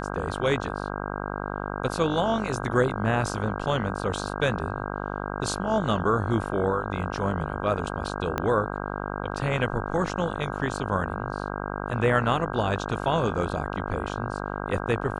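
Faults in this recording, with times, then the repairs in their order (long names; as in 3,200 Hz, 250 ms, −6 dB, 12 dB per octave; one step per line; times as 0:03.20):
mains buzz 50 Hz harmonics 32 −32 dBFS
0:08.38: click −12 dBFS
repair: click removal
hum removal 50 Hz, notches 32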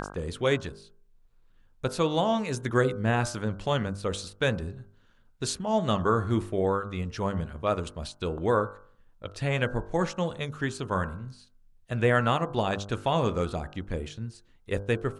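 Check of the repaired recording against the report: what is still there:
0:08.38: click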